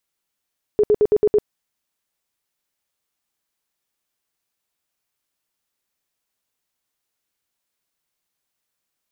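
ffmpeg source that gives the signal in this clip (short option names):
-f lavfi -i "aevalsrc='0.282*sin(2*PI*420*mod(t,0.11))*lt(mod(t,0.11),19/420)':d=0.66:s=44100"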